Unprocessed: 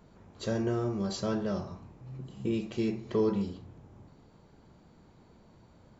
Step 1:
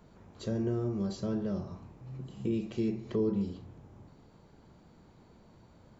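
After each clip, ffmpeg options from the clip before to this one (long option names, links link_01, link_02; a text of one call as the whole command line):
ffmpeg -i in.wav -filter_complex "[0:a]acrossover=split=460[link_01][link_02];[link_02]acompressor=threshold=-48dB:ratio=3[link_03];[link_01][link_03]amix=inputs=2:normalize=0" out.wav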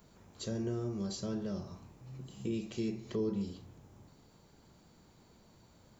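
ffmpeg -i in.wav -af "crystalizer=i=3.5:c=0,volume=-4.5dB" out.wav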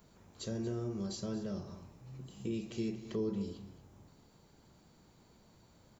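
ffmpeg -i in.wav -af "aecho=1:1:231:0.178,volume=-1.5dB" out.wav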